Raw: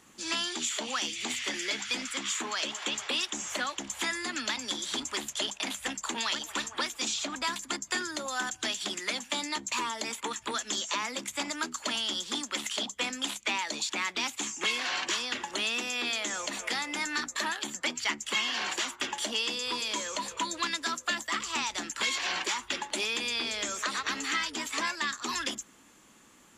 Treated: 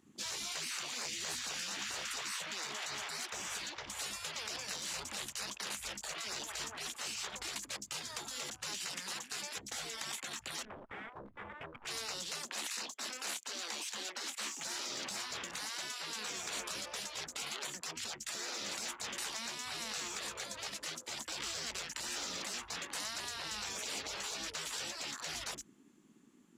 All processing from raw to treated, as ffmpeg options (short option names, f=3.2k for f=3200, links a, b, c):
-filter_complex "[0:a]asettb=1/sr,asplit=3[a][b][c];[a]atrim=end=10.654[d];[b]atrim=start=10.65:end=11.85,asetpts=PTS-STARTPTS,afade=t=in:d=0.004:c=qsin,afade=t=out:st=1.196:d=0.004:c=qsin,lowpass=f=1.4k:w=0.5412,lowpass=f=1.4k:w=1.3066,equalizer=f=250:t=o:w=0.33:g=9,aeval=exprs='max(val(0),0)':c=same[e];[c]atrim=start=11.846[f];[d][e]acrossfade=d=0.004:c1=hsin:c2=qsin[g];[g][f]acrossfade=d=0.004:c1=qsin:c2=hsin,asettb=1/sr,asplit=3[h][i][j];[h]atrim=end=12.454[k];[i]atrim=start=12.45:end=14.59,asetpts=PTS-STARTPTS,afade=t=in:d=0.004:c=qsin,afade=t=out:st=2.136:d=0.004:c=qsin,highpass=f=290:w=0.5412,highpass=f=290:w=1.3066,asplit=2[l][m];[m]adelay=25,volume=-14dB[n];[l][n]amix=inputs=2:normalize=0,atrim=end_sample=94374[o];[j]atrim=start=14.586[p];[k][o]acrossfade=d=0.004:c1=hsin:c2=qsin[q];[q][p]acrossfade=d=0.004:c1=qsin:c2=hsin,afftfilt=real='re*lt(hypot(re,im),0.0282)':imag='im*lt(hypot(re,im),0.0282)':win_size=1024:overlap=0.75,afwtdn=0.00251,volume=1dB"